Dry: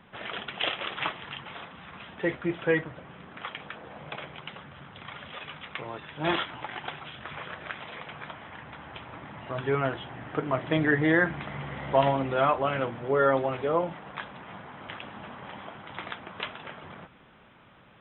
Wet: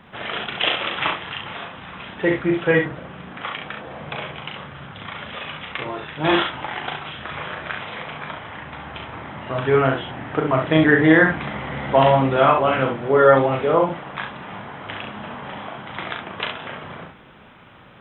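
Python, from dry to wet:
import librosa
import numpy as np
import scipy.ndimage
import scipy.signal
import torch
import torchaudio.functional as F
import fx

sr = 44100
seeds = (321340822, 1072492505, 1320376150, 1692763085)

y = fx.room_early_taps(x, sr, ms=(38, 67), db=(-5.0, -6.0))
y = y * librosa.db_to_amplitude(7.0)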